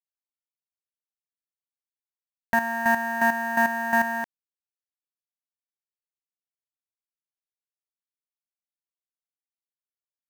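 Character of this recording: a quantiser's noise floor 6-bit, dither none; chopped level 2.8 Hz, depth 65%, duty 25%

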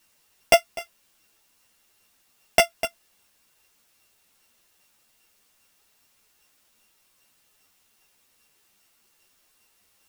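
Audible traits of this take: a buzz of ramps at a fixed pitch in blocks of 16 samples; chopped level 2.5 Hz, depth 60%, duty 15%; a quantiser's noise floor 12-bit, dither triangular; a shimmering, thickened sound

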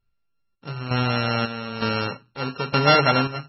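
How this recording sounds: a buzz of ramps at a fixed pitch in blocks of 32 samples; chopped level 1.1 Hz, depth 65%, duty 60%; MP3

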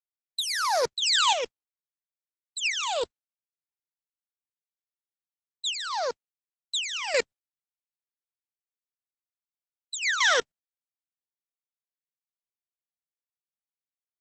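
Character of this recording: phasing stages 12, 0.36 Hz, lowest notch 800–2800 Hz; a quantiser's noise floor 12-bit, dither none; chopped level 0.98 Hz, depth 65%, duty 30%; Opus

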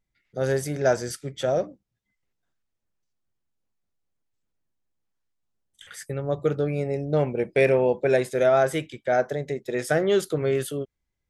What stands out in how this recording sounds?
noise floor -80 dBFS; spectral tilt -5.5 dB/octave

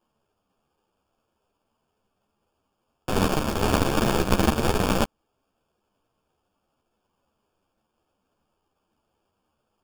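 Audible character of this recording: aliases and images of a low sample rate 2 kHz, jitter 0%; a shimmering, thickened sound

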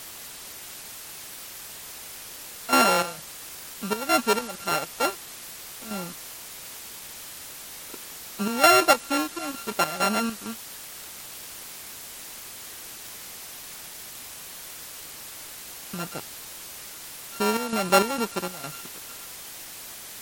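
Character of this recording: a buzz of ramps at a fixed pitch in blocks of 32 samples; chopped level 2.2 Hz, depth 65%, duty 65%; a quantiser's noise floor 8-bit, dither triangular; MP3

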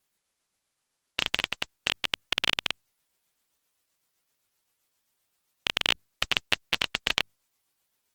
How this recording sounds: tremolo triangle 7.7 Hz, depth 40%; Opus

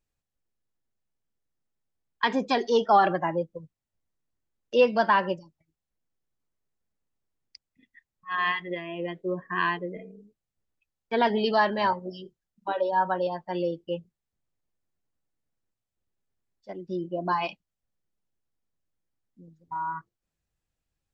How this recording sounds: noise floor -87 dBFS; spectral tilt -3.0 dB/octave

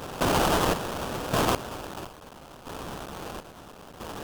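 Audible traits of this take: a quantiser's noise floor 8-bit, dither triangular; chopped level 0.75 Hz, depth 65%, duty 55%; aliases and images of a low sample rate 2.1 kHz, jitter 20%; AAC

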